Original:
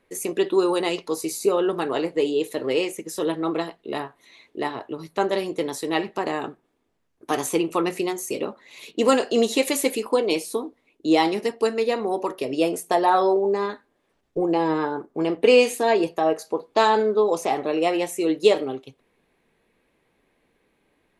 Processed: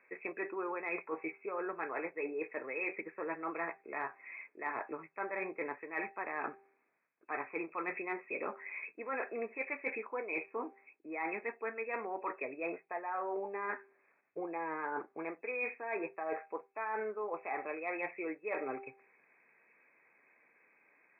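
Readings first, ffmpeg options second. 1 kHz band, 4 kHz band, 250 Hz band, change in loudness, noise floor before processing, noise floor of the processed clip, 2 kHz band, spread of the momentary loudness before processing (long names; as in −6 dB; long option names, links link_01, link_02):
−14.5 dB, below −40 dB, −20.0 dB, −16.5 dB, −69 dBFS, −74 dBFS, −7.5 dB, 12 LU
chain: -af "aderivative,bandreject=frequency=394:width_type=h:width=4,bandreject=frequency=788:width_type=h:width=4,afftfilt=real='re*between(b*sr/4096,100,2600)':imag='im*between(b*sr/4096,100,2600)':win_size=4096:overlap=0.75,areverse,acompressor=threshold=-51dB:ratio=20,areverse,volume=16.5dB"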